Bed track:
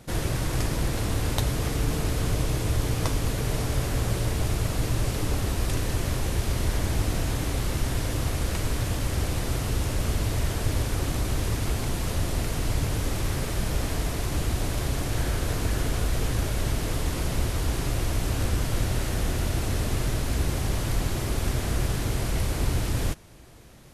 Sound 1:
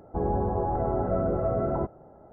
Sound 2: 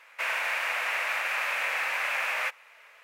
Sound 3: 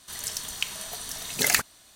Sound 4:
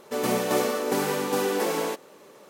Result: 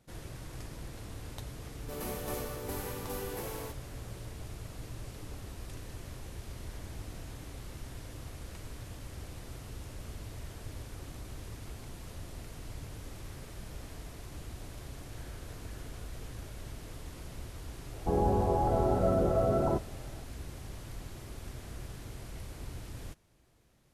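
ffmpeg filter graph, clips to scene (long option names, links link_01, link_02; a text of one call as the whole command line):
ffmpeg -i bed.wav -i cue0.wav -i cue1.wav -i cue2.wav -i cue3.wav -filter_complex "[0:a]volume=-17.5dB[link_01];[4:a]equalizer=frequency=12000:width_type=o:width=0.49:gain=12,atrim=end=2.49,asetpts=PTS-STARTPTS,volume=-15dB,afade=type=in:duration=0.004:curve=hsin,afade=type=out:start_time=2.486:duration=0.004:curve=hsin,adelay=1770[link_02];[1:a]atrim=end=2.32,asetpts=PTS-STARTPTS,volume=-1dB,afade=type=in:duration=0.004:curve=hsin,afade=type=out:start_time=2.316:duration=0.004:curve=hsin,adelay=17920[link_03];[link_01][link_02][link_03]amix=inputs=3:normalize=0" out.wav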